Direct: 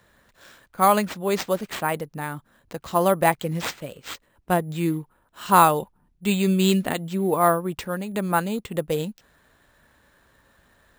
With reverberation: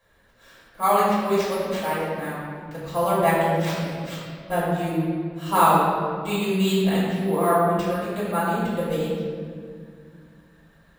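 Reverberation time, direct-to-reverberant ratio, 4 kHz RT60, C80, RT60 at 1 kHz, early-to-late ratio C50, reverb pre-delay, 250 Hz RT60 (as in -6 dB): 2.1 s, -11.0 dB, 1.4 s, 0.0 dB, 1.9 s, -1.5 dB, 3 ms, 3.1 s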